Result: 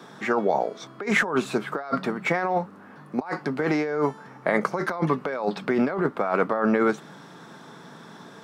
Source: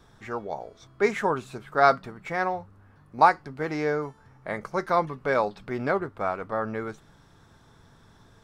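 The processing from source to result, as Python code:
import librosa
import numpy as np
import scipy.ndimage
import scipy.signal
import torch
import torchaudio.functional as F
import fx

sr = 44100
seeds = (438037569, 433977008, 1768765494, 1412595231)

y = scipy.signal.sosfilt(scipy.signal.butter(6, 160.0, 'highpass', fs=sr, output='sos'), x)
y = fx.high_shelf(y, sr, hz=4600.0, db=-6.0)
y = fx.over_compress(y, sr, threshold_db=-33.0, ratio=-1.0)
y = y * 10.0 ** (8.0 / 20.0)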